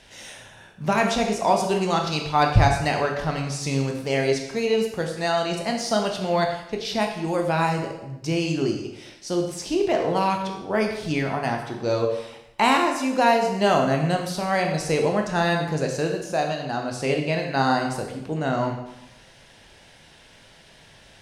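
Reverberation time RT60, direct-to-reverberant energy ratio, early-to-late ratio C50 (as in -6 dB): 0.85 s, 2.0 dB, 5.5 dB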